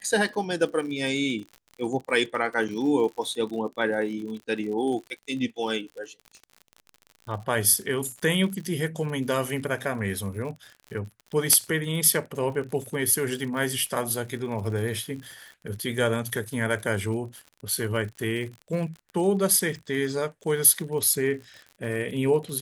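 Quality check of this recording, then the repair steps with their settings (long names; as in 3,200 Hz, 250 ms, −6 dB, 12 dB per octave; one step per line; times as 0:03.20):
surface crackle 58 per second −35 dBFS
0:02.68–0:02.69: drop-out 6.1 ms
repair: click removal
repair the gap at 0:02.68, 6.1 ms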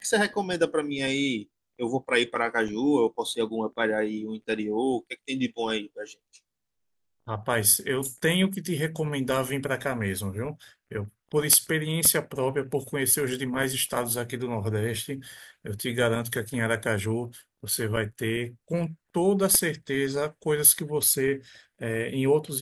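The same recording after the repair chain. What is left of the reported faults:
none of them is left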